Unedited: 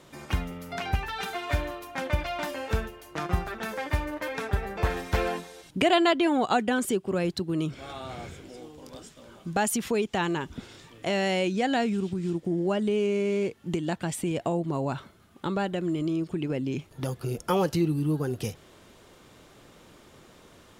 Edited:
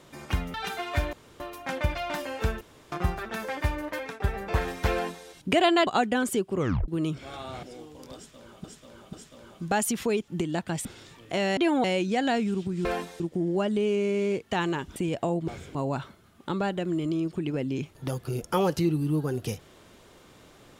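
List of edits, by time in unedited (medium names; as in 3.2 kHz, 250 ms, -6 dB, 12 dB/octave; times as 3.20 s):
0.54–1.10 s: delete
1.69 s: insert room tone 0.27 s
2.90–3.21 s: room tone
4.18–4.49 s: fade out equal-power, to -17 dB
5.21–5.56 s: copy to 12.31 s
6.16–6.43 s: move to 11.30 s
7.13 s: tape stop 0.31 s
8.19–8.46 s: move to 14.71 s
8.98–9.47 s: loop, 3 plays
10.13–10.58 s: swap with 13.62–14.19 s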